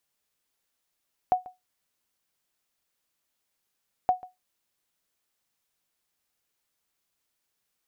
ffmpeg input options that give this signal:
ffmpeg -f lavfi -i "aevalsrc='0.211*(sin(2*PI*735*mod(t,2.77))*exp(-6.91*mod(t,2.77)/0.18)+0.0891*sin(2*PI*735*max(mod(t,2.77)-0.14,0))*exp(-6.91*max(mod(t,2.77)-0.14,0)/0.18))':duration=5.54:sample_rate=44100" out.wav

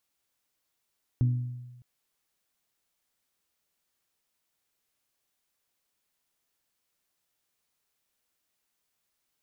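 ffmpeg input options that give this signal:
ffmpeg -f lavfi -i "aevalsrc='0.112*pow(10,-3*t/1.17)*sin(2*PI*123*t)+0.0299*pow(10,-3*t/0.72)*sin(2*PI*246*t)+0.00794*pow(10,-3*t/0.634)*sin(2*PI*295.2*t)+0.00211*pow(10,-3*t/0.542)*sin(2*PI*369*t)+0.000562*pow(10,-3*t/0.443)*sin(2*PI*492*t)':duration=0.61:sample_rate=44100" out.wav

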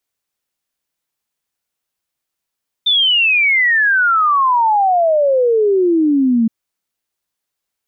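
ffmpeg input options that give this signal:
ffmpeg -f lavfi -i "aevalsrc='0.316*clip(min(t,3.62-t)/0.01,0,1)*sin(2*PI*3600*3.62/log(220/3600)*(exp(log(220/3600)*t/3.62)-1))':duration=3.62:sample_rate=44100" out.wav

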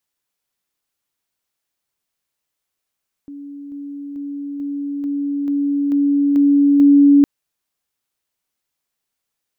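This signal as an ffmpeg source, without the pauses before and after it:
ffmpeg -f lavfi -i "aevalsrc='pow(10,(-30.5+3*floor(t/0.44))/20)*sin(2*PI*284*t)':duration=3.96:sample_rate=44100" out.wav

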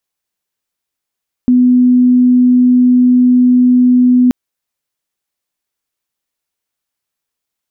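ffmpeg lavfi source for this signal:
ffmpeg -f lavfi -i "sine=frequency=249:duration=2.83:sample_rate=44100,volume=13.06dB" out.wav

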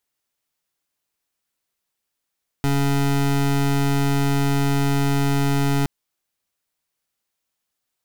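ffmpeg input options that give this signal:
ffmpeg -f lavfi -i "aevalsrc='0.112*(2*lt(mod(140*t,1),0.25)-1)':duration=3.22:sample_rate=44100" out.wav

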